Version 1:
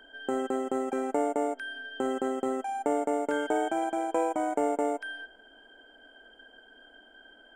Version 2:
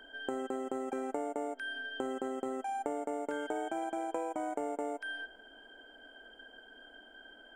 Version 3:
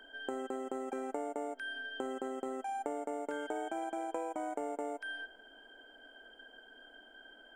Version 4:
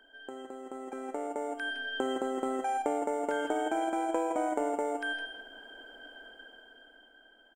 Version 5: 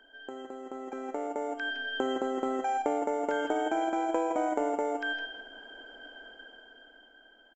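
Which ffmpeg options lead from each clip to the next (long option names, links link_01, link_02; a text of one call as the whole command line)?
ffmpeg -i in.wav -af "acompressor=threshold=-34dB:ratio=4" out.wav
ffmpeg -i in.wav -af "equalizer=frequency=84:width=0.89:gain=-9.5,volume=-1.5dB" out.wav
ffmpeg -i in.wav -af "dynaudnorm=framelen=200:gausssize=13:maxgain=12dB,aecho=1:1:161|167:0.299|0.237,volume=-5dB" out.wav
ffmpeg -i in.wav -af "aresample=16000,aresample=44100,volume=1.5dB" out.wav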